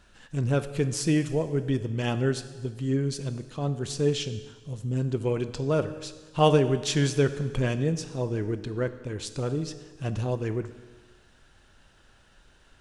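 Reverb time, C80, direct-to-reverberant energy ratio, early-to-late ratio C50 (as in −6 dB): 1.4 s, 13.5 dB, 10.5 dB, 12.0 dB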